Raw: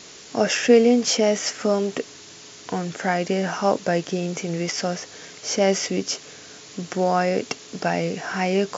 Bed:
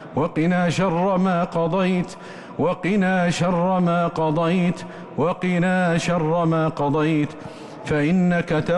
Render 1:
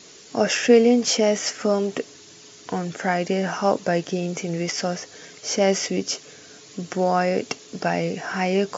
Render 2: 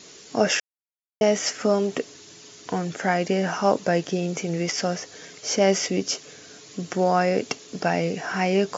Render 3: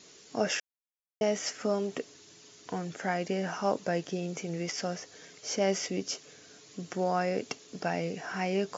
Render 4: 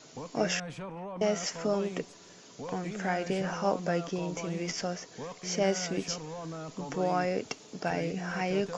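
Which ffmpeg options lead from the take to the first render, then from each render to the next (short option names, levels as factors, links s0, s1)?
-af "afftdn=nr=6:nf=-44"
-filter_complex "[0:a]asplit=3[s0][s1][s2];[s0]atrim=end=0.6,asetpts=PTS-STARTPTS,afade=t=out:st=0.596:d=0.004:c=hsin[s3];[s1]atrim=start=0.6:end=1.21,asetpts=PTS-STARTPTS,volume=0[s4];[s2]atrim=start=1.21,asetpts=PTS-STARTPTS,afade=t=in:d=0.004:c=hsin[s5];[s3][s4][s5]concat=n=3:v=0:a=1"
-af "volume=0.376"
-filter_complex "[1:a]volume=0.0944[s0];[0:a][s0]amix=inputs=2:normalize=0"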